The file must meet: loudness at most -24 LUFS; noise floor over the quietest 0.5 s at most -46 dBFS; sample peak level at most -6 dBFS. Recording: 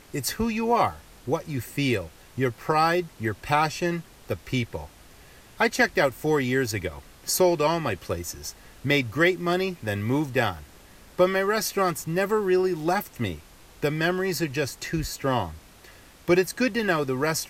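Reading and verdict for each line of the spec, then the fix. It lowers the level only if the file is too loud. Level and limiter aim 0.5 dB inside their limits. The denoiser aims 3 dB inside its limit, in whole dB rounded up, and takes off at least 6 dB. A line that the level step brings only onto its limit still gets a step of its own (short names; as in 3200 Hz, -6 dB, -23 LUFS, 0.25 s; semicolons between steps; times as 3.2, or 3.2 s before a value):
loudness -25.5 LUFS: OK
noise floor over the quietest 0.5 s -50 dBFS: OK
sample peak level -8.5 dBFS: OK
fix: none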